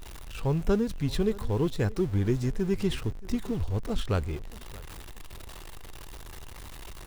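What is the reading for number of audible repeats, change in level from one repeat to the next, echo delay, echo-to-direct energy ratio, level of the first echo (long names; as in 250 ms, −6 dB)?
2, −10.5 dB, 627 ms, −20.0 dB, −20.5 dB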